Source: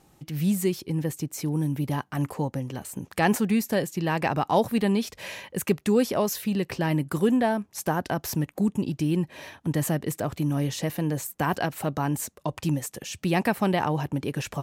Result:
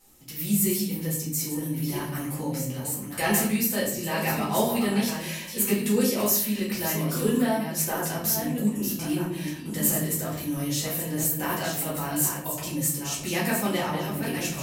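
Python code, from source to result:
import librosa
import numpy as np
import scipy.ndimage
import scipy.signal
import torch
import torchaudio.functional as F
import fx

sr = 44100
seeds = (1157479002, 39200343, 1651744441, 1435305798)

y = fx.reverse_delay(x, sr, ms=660, wet_db=-7)
y = librosa.effects.preemphasis(y, coef=0.8, zi=[0.0])
y = fx.room_shoebox(y, sr, seeds[0], volume_m3=85.0, walls='mixed', distance_m=2.0)
y = y * 10.0 ** (1.0 / 20.0)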